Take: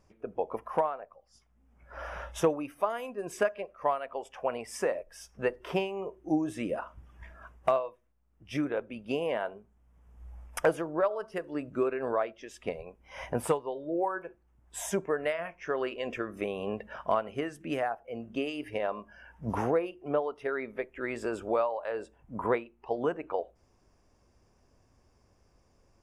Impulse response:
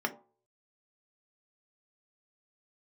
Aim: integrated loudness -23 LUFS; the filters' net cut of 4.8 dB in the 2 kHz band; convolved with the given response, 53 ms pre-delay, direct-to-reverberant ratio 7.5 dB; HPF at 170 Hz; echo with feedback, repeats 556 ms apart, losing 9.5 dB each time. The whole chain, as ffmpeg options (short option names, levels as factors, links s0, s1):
-filter_complex "[0:a]highpass=170,equalizer=f=2000:t=o:g=-6.5,aecho=1:1:556|1112|1668|2224:0.335|0.111|0.0365|0.012,asplit=2[s0][s1];[1:a]atrim=start_sample=2205,adelay=53[s2];[s1][s2]afir=irnorm=-1:irlink=0,volume=0.2[s3];[s0][s3]amix=inputs=2:normalize=0,volume=3.16"